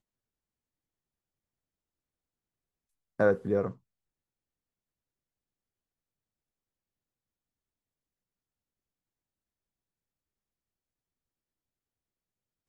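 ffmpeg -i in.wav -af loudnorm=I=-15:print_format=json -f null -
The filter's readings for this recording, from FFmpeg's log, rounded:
"input_i" : "-28.8",
"input_tp" : "-12.6",
"input_lra" : "0.0",
"input_thresh" : "-39.7",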